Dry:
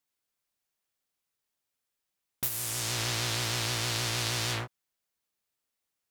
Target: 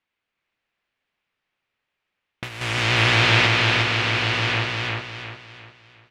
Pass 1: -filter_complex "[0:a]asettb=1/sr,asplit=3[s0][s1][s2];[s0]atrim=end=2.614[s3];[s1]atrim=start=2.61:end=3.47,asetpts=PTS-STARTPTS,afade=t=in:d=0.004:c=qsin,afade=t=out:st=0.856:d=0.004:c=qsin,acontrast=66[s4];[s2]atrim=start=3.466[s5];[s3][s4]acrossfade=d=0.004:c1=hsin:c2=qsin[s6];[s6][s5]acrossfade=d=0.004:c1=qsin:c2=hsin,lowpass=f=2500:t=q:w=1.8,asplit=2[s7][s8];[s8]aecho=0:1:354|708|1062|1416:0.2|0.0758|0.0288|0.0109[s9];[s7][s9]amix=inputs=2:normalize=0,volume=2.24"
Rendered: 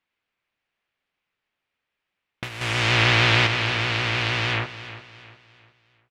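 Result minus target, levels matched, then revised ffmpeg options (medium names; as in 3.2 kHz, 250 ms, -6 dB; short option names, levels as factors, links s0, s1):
echo-to-direct -11.5 dB
-filter_complex "[0:a]asettb=1/sr,asplit=3[s0][s1][s2];[s0]atrim=end=2.614[s3];[s1]atrim=start=2.61:end=3.47,asetpts=PTS-STARTPTS,afade=t=in:d=0.004:c=qsin,afade=t=out:st=0.856:d=0.004:c=qsin,acontrast=66[s4];[s2]atrim=start=3.466[s5];[s3][s4]acrossfade=d=0.004:c1=hsin:c2=qsin[s6];[s6][s5]acrossfade=d=0.004:c1=qsin:c2=hsin,lowpass=f=2500:t=q:w=1.8,asplit=2[s7][s8];[s8]aecho=0:1:354|708|1062|1416|1770:0.75|0.285|0.108|0.0411|0.0156[s9];[s7][s9]amix=inputs=2:normalize=0,volume=2.24"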